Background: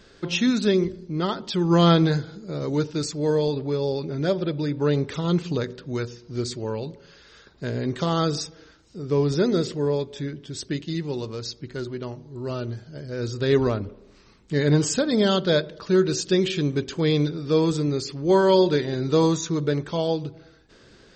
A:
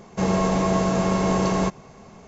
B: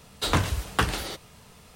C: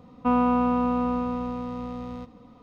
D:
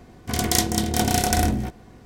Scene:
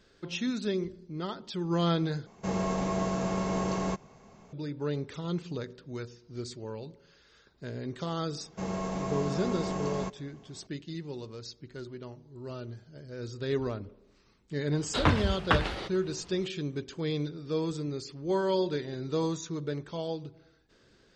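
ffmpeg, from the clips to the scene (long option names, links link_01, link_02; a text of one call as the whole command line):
ffmpeg -i bed.wav -i cue0.wav -i cue1.wav -filter_complex "[1:a]asplit=2[link_01][link_02];[0:a]volume=-10.5dB[link_03];[2:a]lowpass=3300[link_04];[link_03]asplit=2[link_05][link_06];[link_05]atrim=end=2.264[link_07];[link_01]atrim=end=2.27,asetpts=PTS-STARTPTS,volume=-9dB[link_08];[link_06]atrim=start=4.526[link_09];[link_02]atrim=end=2.27,asetpts=PTS-STARTPTS,volume=-12.5dB,afade=type=in:duration=0.004:curve=hsin,afade=type=out:start_time=2.266:duration=0.004:curve=hsin,adelay=8400[link_10];[link_04]atrim=end=1.75,asetpts=PTS-STARTPTS,volume=-1dB,afade=type=in:duration=0.004:curve=hsin,afade=type=out:start_time=1.746:duration=0.004:curve=hsin,adelay=14720[link_11];[link_07][link_08]acrossfade=duration=0.004:curve1=hsin:curve2=hsin[link_12];[link_12][link_09]acrossfade=duration=0.004:curve1=hsin:curve2=hsin[link_13];[link_13][link_10][link_11]amix=inputs=3:normalize=0" out.wav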